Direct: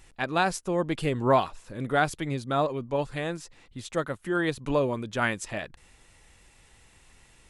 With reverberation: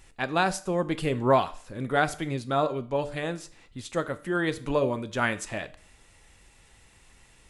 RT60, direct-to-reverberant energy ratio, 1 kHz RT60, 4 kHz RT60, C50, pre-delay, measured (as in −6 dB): 0.45 s, 11.5 dB, 0.45 s, 0.45 s, 17.0 dB, 7 ms